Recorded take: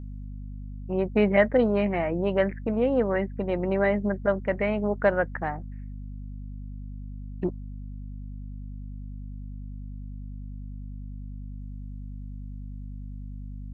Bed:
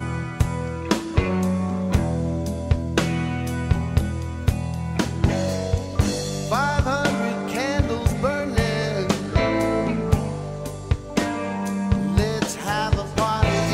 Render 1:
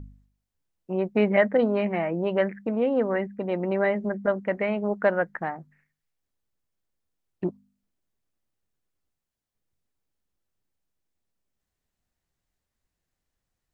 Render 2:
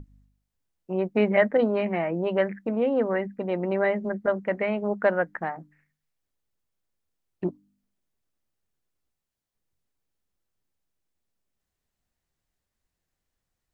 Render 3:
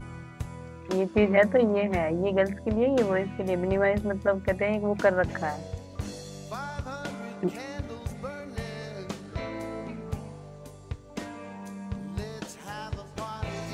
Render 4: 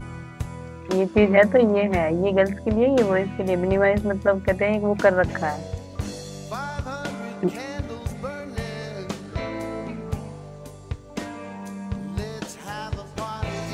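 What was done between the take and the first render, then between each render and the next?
de-hum 50 Hz, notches 5
notches 50/100/150/200/250/300 Hz
add bed -14.5 dB
gain +5 dB

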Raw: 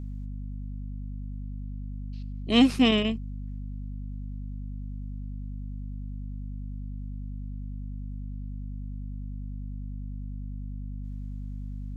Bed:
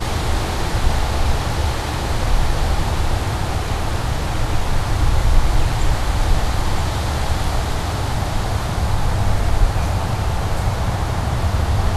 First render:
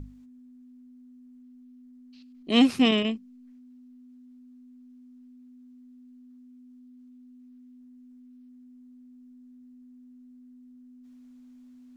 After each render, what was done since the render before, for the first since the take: notches 50/100/150/200 Hz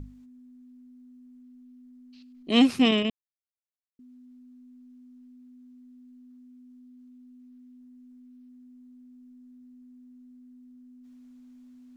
3.1–3.99 mute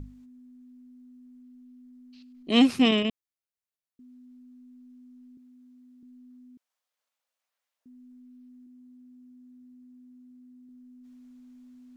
5.37–6.03 HPF 250 Hz; 6.57–7.86 elliptic high-pass 520 Hz, stop band 50 dB; 8.66–10.69 notch comb 310 Hz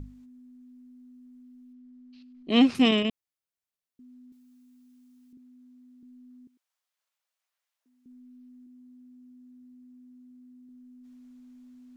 1.73–2.75 air absorption 100 m; 4.32–5.33 tilt +3 dB/oct; 6.47–8.06 Bessel high-pass 770 Hz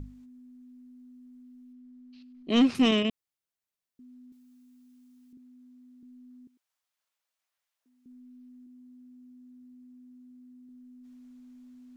soft clip -13 dBFS, distortion -17 dB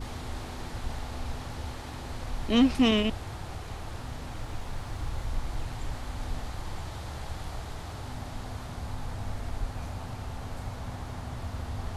add bed -17.5 dB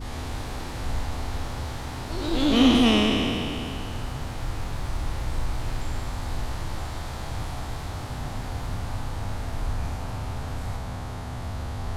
spectral trails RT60 2.81 s; echoes that change speed 0.106 s, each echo +2 st, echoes 3, each echo -6 dB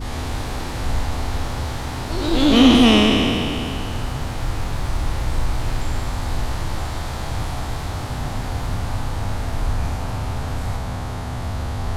gain +6.5 dB; limiter -2 dBFS, peak gain reduction 1 dB

